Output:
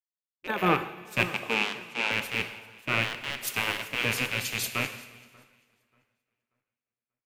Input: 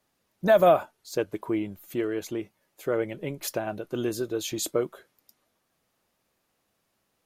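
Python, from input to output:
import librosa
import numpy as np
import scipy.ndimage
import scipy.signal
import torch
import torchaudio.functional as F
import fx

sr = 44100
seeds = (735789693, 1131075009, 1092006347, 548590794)

p1 = fx.rattle_buzz(x, sr, strikes_db=-37.0, level_db=-19.0)
p2 = fx.cabinet(p1, sr, low_hz=230.0, low_slope=24, high_hz=9200.0, hz=(390.0, 860.0, 1900.0), db=(-5, 9, -5), at=(1.28, 2.11))
p3 = fx.rider(p2, sr, range_db=4, speed_s=0.5)
p4 = fx.spec_gate(p3, sr, threshold_db=-10, keep='weak')
p5 = p4 + fx.echo_split(p4, sr, split_hz=2000.0, low_ms=586, high_ms=390, feedback_pct=52, wet_db=-14.0, dry=0)
p6 = fx.rev_plate(p5, sr, seeds[0], rt60_s=3.1, hf_ratio=0.95, predelay_ms=0, drr_db=6.5)
p7 = fx.band_widen(p6, sr, depth_pct=100)
y = p7 * 10.0 ** (2.5 / 20.0)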